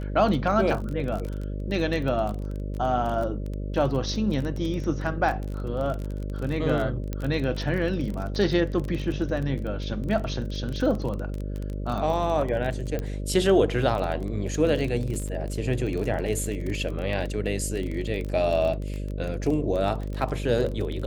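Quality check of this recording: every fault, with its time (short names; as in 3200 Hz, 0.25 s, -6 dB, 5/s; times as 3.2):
buzz 50 Hz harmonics 12 -31 dBFS
crackle 27/s -29 dBFS
7.13 pop -17 dBFS
12.99 pop -17 dBFS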